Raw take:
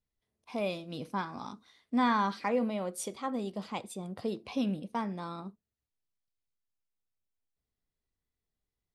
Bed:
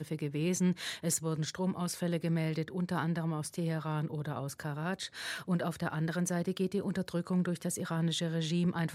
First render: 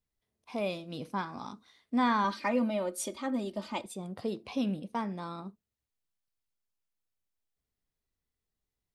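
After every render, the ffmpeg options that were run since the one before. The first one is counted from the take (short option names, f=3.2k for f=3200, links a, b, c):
-filter_complex "[0:a]asettb=1/sr,asplit=3[a][b][c];[a]atrim=end=2.244[d];[b]atrim=start=2.24:end=3.86,asetpts=PTS-STARTPTS,afade=t=in:d=0.004:c=qsin,afade=t=out:st=1.616:d=0.004:c=qsin,aecho=1:1:3.3:0.83,atrim=end_sample=71442[e];[c]atrim=start=3.856[f];[d][e]acrossfade=d=0.004:c1=hsin:c2=qsin[g];[g][f]acrossfade=d=0.004:c1=qsin:c2=hsin"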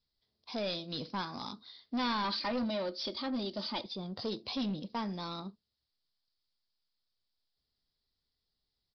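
-af "aexciter=amount=7.3:drive=5.2:freq=3.7k,aresample=11025,asoftclip=type=tanh:threshold=-29.5dB,aresample=44100"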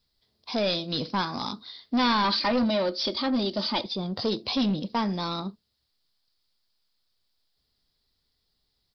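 -af "volume=9.5dB"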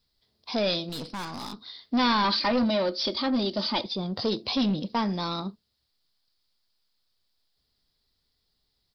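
-filter_complex "[0:a]asettb=1/sr,asplit=3[a][b][c];[a]atrim=end=0.894[d];[b]atrim=start=0.89:end=1.62,asetpts=PTS-STARTPTS,afade=t=in:d=0.004:c=qsin,afade=t=out:st=0.726:d=0.004:c=qsin,aeval=exprs='(tanh(39.8*val(0)+0.55)-tanh(0.55))/39.8':c=same[e];[c]atrim=start=1.616[f];[d][e]acrossfade=d=0.004:c1=hsin:c2=qsin[g];[g][f]acrossfade=d=0.004:c1=qsin:c2=hsin"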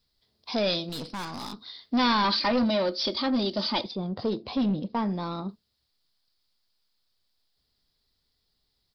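-filter_complex "[0:a]asettb=1/sr,asplit=3[a][b][c];[a]atrim=end=3.914[d];[b]atrim=start=3.91:end=5.49,asetpts=PTS-STARTPTS,afade=t=in:d=0.004:c=qsin,afade=t=out:st=1.576:d=0.004:c=qsin,lowpass=f=1.2k:p=1[e];[c]atrim=start=5.486[f];[d][e]acrossfade=d=0.004:c1=hsin:c2=qsin[g];[g][f]acrossfade=d=0.004:c1=qsin:c2=hsin"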